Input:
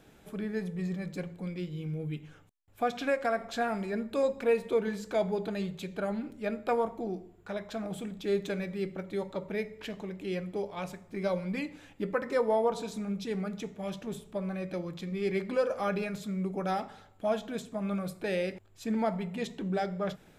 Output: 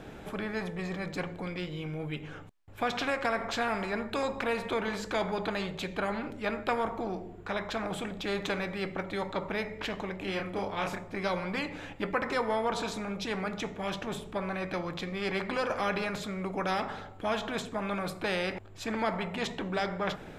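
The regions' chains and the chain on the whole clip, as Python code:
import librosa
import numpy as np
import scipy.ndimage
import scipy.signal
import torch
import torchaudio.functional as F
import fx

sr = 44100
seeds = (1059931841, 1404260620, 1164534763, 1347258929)

y = fx.chain(x, sr, fx.peak_eq(hz=4700.0, db=-2.5, octaves=2.1),
    fx.doubler(ms=31.0, db=-3.5), at=(10.18, 11.04))
y = fx.lowpass(y, sr, hz=2100.0, slope=6)
y = fx.dynamic_eq(y, sr, hz=1000.0, q=0.91, threshold_db=-44.0, ratio=4.0, max_db=6)
y = fx.spectral_comp(y, sr, ratio=2.0)
y = F.gain(torch.from_numpy(y), -2.0).numpy()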